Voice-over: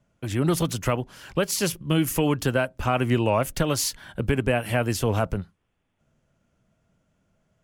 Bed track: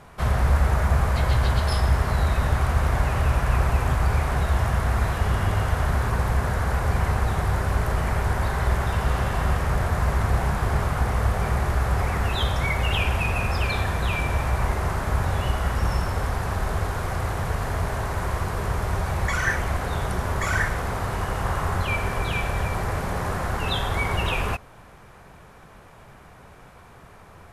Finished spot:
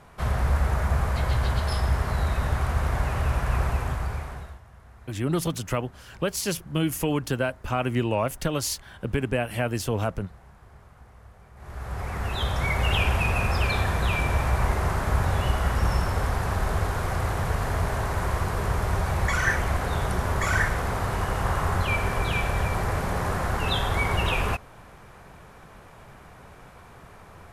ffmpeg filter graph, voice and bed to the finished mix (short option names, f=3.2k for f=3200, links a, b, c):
-filter_complex "[0:a]adelay=4850,volume=-3dB[a];[1:a]volume=24dB,afade=t=out:st=3.65:d=0.95:silence=0.0630957,afade=t=in:st=11.55:d=1.35:silence=0.0421697[b];[a][b]amix=inputs=2:normalize=0"